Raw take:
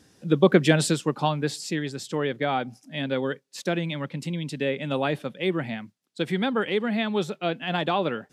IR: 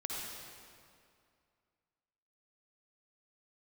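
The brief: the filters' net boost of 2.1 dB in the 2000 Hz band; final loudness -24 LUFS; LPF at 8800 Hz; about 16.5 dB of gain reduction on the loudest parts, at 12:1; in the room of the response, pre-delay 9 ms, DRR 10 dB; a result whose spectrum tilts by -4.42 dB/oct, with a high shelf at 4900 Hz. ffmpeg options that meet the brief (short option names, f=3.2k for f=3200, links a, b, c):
-filter_complex "[0:a]lowpass=8.8k,equalizer=f=2k:t=o:g=4,highshelf=f=4.9k:g=-8,acompressor=threshold=-29dB:ratio=12,asplit=2[a][b];[1:a]atrim=start_sample=2205,adelay=9[c];[b][c]afir=irnorm=-1:irlink=0,volume=-12dB[d];[a][d]amix=inputs=2:normalize=0,volume=10.5dB"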